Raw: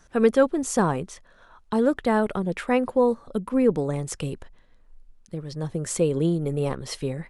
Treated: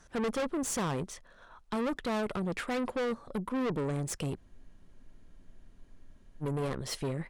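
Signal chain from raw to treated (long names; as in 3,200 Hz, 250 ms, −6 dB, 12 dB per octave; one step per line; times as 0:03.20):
tube saturation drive 29 dB, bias 0.5
frozen spectrum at 0:04.40, 2.01 s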